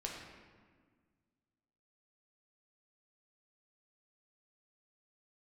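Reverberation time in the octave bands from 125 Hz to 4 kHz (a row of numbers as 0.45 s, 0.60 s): 2.2 s, 2.2 s, 1.7 s, 1.6 s, 1.4 s, 1.0 s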